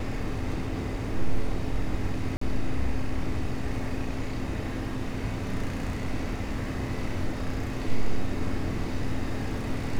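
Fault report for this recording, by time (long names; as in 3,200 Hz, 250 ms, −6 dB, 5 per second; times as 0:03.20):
0:02.37–0:02.41: drop-out 44 ms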